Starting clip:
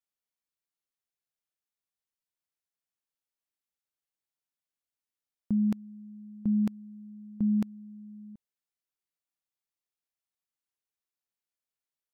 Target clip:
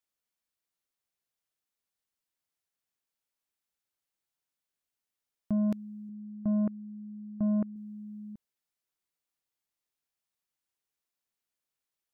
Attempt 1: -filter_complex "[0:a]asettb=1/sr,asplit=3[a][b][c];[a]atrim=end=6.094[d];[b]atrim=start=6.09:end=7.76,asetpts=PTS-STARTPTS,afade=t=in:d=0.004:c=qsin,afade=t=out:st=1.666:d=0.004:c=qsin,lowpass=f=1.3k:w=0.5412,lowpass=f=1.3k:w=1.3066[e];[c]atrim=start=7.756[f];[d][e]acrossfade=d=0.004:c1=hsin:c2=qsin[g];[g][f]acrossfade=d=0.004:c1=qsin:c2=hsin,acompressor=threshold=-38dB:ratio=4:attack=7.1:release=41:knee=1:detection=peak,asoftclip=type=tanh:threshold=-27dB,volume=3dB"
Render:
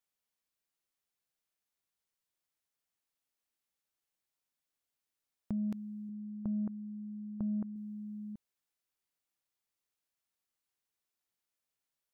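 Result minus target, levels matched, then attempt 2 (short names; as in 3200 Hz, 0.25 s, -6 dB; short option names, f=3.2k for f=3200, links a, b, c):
compressor: peak gain reduction +11 dB
-filter_complex "[0:a]asettb=1/sr,asplit=3[a][b][c];[a]atrim=end=6.094[d];[b]atrim=start=6.09:end=7.76,asetpts=PTS-STARTPTS,afade=t=in:d=0.004:c=qsin,afade=t=out:st=1.666:d=0.004:c=qsin,lowpass=f=1.3k:w=0.5412,lowpass=f=1.3k:w=1.3066[e];[c]atrim=start=7.756[f];[d][e]acrossfade=d=0.004:c1=hsin:c2=qsin[g];[g][f]acrossfade=d=0.004:c1=qsin:c2=hsin,asoftclip=type=tanh:threshold=-27dB,volume=3dB"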